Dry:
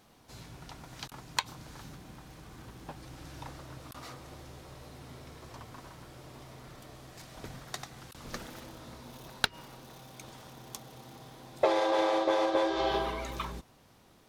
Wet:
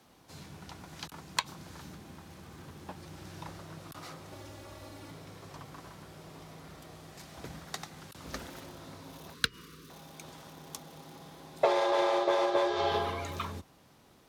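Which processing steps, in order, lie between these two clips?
4.32–5.11 s: comb 3.6 ms, depth 77%; frequency shift +29 Hz; 9.34–9.90 s: elliptic band-stop 480–1100 Hz, stop band 40 dB

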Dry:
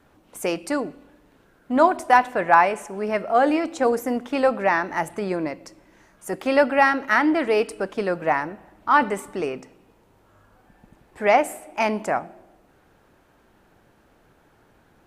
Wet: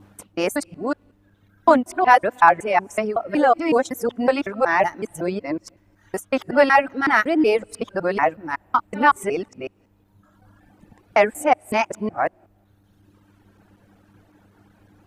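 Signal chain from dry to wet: time reversed locally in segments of 186 ms; mains buzz 100 Hz, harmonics 3, -54 dBFS -2 dB/octave; reverb removal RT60 1.5 s; trim +2.5 dB

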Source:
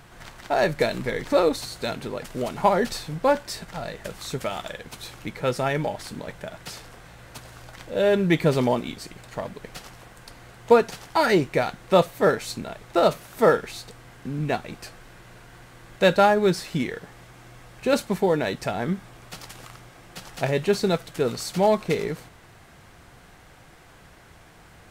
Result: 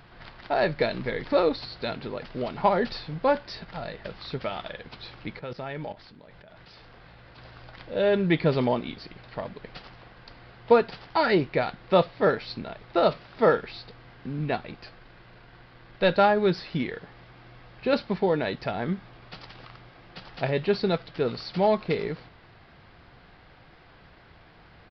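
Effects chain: 14.71–16.16 s: partial rectifier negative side -3 dB; resampled via 11.025 kHz; 5.39–7.38 s: level held to a coarse grid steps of 16 dB; trim -2.5 dB

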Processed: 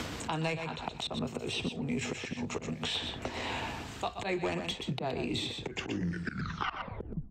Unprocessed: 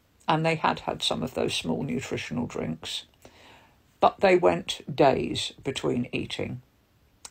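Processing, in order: tape stop on the ending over 1.73 s; low-pass 7.6 kHz 12 dB/octave; band-stop 570 Hz, Q 12; slow attack 353 ms; reverse; upward compressor, threshold -37 dBFS; reverse; saturation -20 dBFS, distortion -16 dB; delay 121 ms -8 dB; three bands compressed up and down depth 100%

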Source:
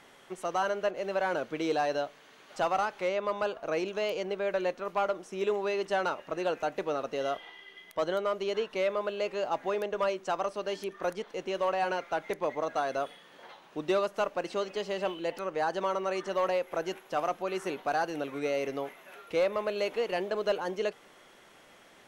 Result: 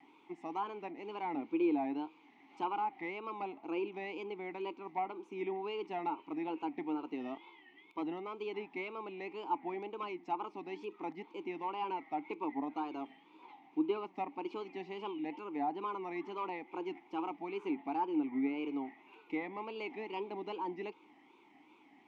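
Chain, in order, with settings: vowel filter u; low-pass that closes with the level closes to 2.7 kHz, closed at -39 dBFS; wow and flutter 140 cents; trim +7.5 dB

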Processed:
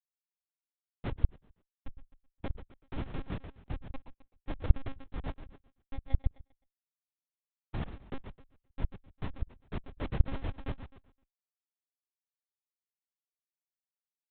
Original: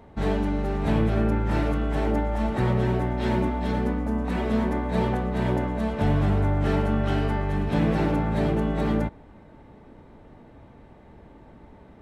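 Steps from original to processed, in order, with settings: random holes in the spectrogram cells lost 81%; elliptic low-pass 1.3 kHz, stop band 60 dB; reverb removal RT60 1.5 s; Schmitt trigger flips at -26 dBFS; tape speed -16%; on a send: feedback delay 129 ms, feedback 32%, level -9.5 dB; on the sum: monotone LPC vocoder at 8 kHz 270 Hz; trim +2 dB

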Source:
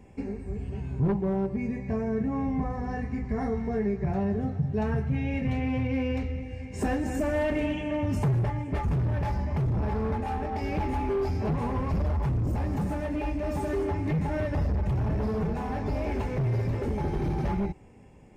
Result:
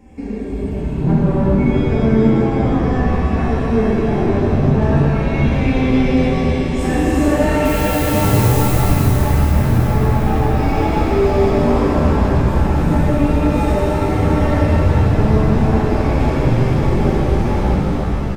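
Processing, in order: flange 0.17 Hz, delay 3.7 ms, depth 7.3 ms, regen +47%; 7.64–8.65 s: added noise blue -43 dBFS; frequency-shifting echo 431 ms, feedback 55%, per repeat -100 Hz, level -8 dB; pitch-shifted reverb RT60 3.5 s, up +7 st, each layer -8 dB, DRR -8 dB; trim +7 dB

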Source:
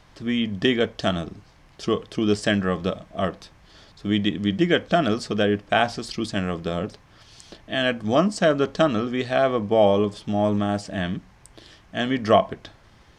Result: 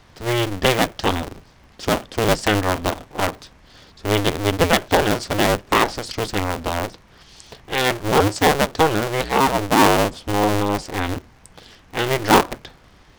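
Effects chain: cycle switcher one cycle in 2, inverted; trim +3 dB

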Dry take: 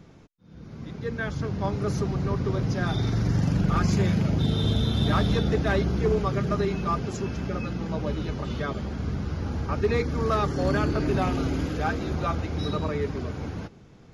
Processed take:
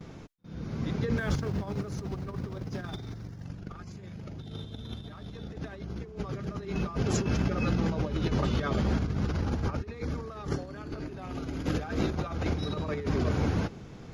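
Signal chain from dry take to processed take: 1.17–3.45 s: companding laws mixed up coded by mu; gate with hold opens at -45 dBFS; compressor with a negative ratio -31 dBFS, ratio -0.5

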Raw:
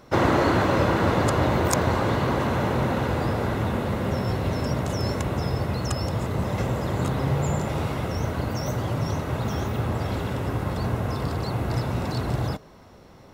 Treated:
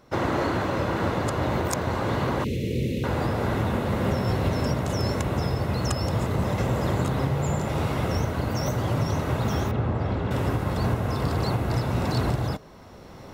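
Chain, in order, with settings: recorder AGC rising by 8.4 dB/s; 2.44–3.04 s: elliptic band-stop 470–2300 Hz, stop band 40 dB; 9.71–10.31 s: tape spacing loss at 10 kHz 22 dB; trim -5.5 dB

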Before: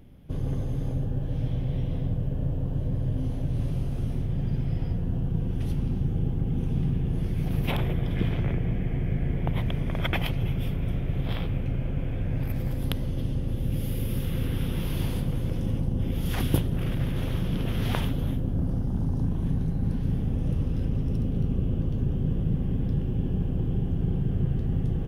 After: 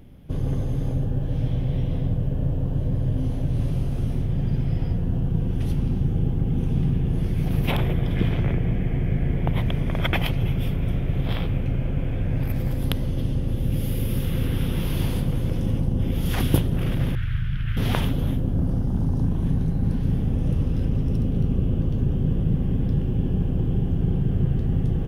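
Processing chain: 17.15–17.77 s: FFT filter 130 Hz 0 dB, 200 Hz -16 dB, 530 Hz -28 dB, 980 Hz -18 dB, 1.5 kHz +4 dB, 7.2 kHz -18 dB; trim +4 dB

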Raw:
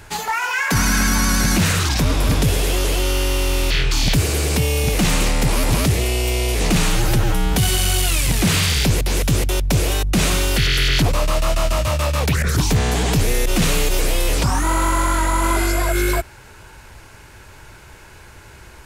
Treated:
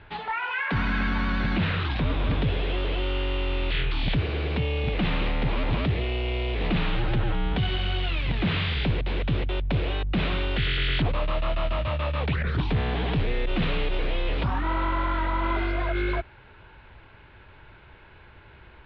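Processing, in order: steep low-pass 3.7 kHz 48 dB/octave; trim -7.5 dB

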